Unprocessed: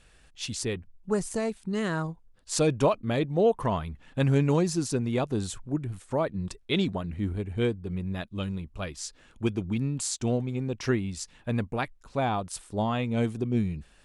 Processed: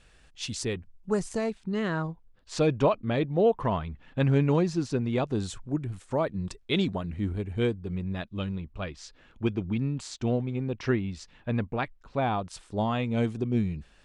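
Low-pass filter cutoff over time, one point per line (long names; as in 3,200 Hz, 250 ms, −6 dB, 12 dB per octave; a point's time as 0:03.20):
0:01.11 8,500 Hz
0:01.78 4,000 Hz
0:04.90 4,000 Hz
0:05.69 8,300 Hz
0:07.67 8,300 Hz
0:08.69 3,800 Hz
0:12.23 3,800 Hz
0:12.77 6,800 Hz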